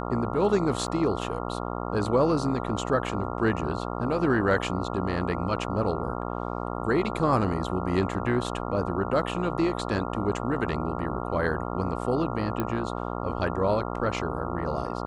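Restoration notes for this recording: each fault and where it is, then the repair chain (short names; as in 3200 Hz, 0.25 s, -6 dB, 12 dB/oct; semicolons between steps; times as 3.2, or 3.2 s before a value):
buzz 60 Hz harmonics 23 -32 dBFS
0.87–0.88 gap 7.7 ms
12.6 pop -15 dBFS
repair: de-click; de-hum 60 Hz, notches 23; interpolate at 0.87, 7.7 ms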